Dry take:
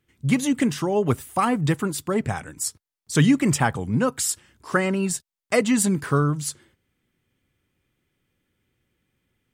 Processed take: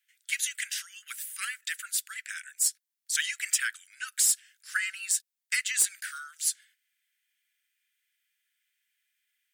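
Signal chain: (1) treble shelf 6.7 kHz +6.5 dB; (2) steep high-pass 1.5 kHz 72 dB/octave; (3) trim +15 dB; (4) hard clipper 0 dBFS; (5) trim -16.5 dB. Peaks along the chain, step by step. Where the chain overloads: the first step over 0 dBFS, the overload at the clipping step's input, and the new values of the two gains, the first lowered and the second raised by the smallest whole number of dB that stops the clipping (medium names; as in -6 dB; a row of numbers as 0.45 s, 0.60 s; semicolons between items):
-5.0 dBFS, -6.5 dBFS, +8.5 dBFS, 0.0 dBFS, -16.5 dBFS; step 3, 8.5 dB; step 3 +6 dB, step 5 -7.5 dB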